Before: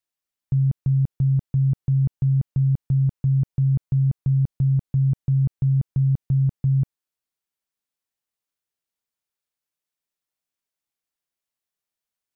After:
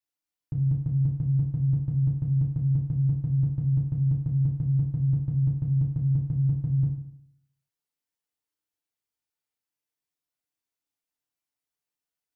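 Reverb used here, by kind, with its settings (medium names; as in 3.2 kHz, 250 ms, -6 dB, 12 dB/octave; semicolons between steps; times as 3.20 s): FDN reverb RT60 0.68 s, low-frequency decay 1.1×, high-frequency decay 0.85×, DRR -3 dB; trim -7.5 dB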